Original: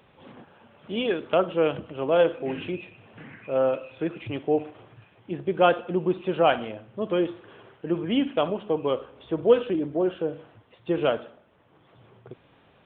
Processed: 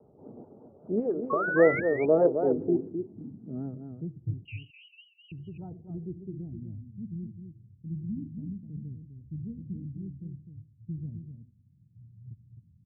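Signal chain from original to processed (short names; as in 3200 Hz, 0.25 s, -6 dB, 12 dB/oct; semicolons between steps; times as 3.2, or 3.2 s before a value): Wiener smoothing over 25 samples; 0.99–1.48 compressor 5:1, threshold -30 dBFS, peak gain reduction 12.5 dB; low-pass sweep 520 Hz -> 100 Hz, 2.41–4.4; notch comb 530 Hz; low-pass sweep 1500 Hz -> 210 Hz, 5.41–6.61; 1.3–1.8 painted sound rise 1100–2300 Hz -27 dBFS; 4.45–5.32 inverted band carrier 2900 Hz; air absorption 460 m; on a send: echo 0.256 s -7.5 dB; on the sum: vibrato 5 Hz 93 cents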